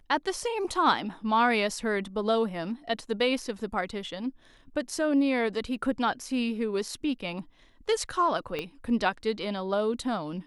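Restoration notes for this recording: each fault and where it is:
8.59 pop -19 dBFS

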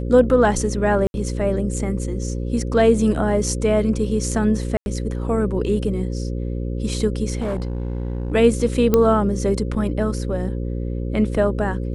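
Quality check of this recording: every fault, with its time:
buzz 60 Hz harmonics 9 -25 dBFS
1.07–1.14 gap 71 ms
4.77–4.86 gap 91 ms
7.38–8.33 clipped -20 dBFS
8.94 pop -4 dBFS

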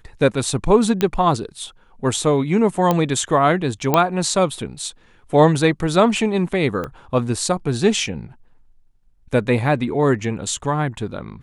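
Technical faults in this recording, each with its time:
1.01 pop -6 dBFS
2.91 pop -5 dBFS
3.94 pop -2 dBFS
6.84 pop -15 dBFS

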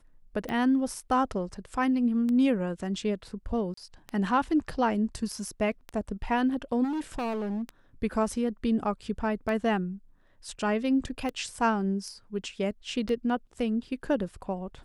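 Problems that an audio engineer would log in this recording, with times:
tick 33 1/3 rpm -21 dBFS
3.74–3.77 gap 34 ms
6.83–7.62 clipped -28.5 dBFS

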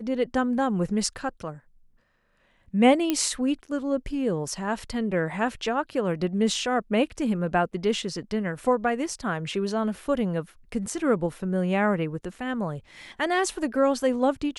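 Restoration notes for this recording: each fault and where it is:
3.1 pop -10 dBFS

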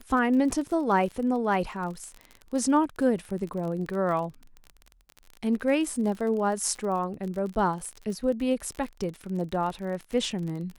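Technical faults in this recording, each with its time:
crackle 38/s -33 dBFS

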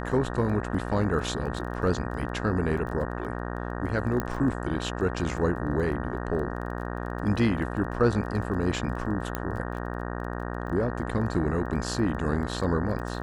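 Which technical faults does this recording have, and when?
buzz 60 Hz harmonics 31 -33 dBFS
crackle 13/s -36 dBFS
4.2 pop -14 dBFS
9.35 pop -14 dBFS

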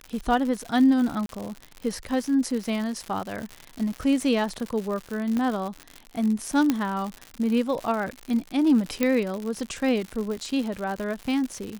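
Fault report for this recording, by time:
crackle 130/s -29 dBFS
1.26–1.29 gap 32 ms
5.37 pop -16 dBFS
6.7 pop -9 dBFS
9.03 pop -9 dBFS

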